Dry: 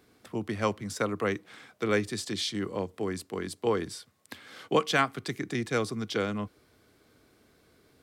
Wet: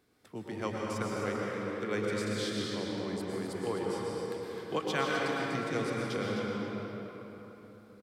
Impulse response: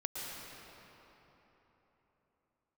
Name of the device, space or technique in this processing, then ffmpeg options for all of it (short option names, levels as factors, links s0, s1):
cave: -filter_complex "[0:a]aecho=1:1:258:0.376[s0];[1:a]atrim=start_sample=2205[s1];[s0][s1]afir=irnorm=-1:irlink=0,volume=0.501"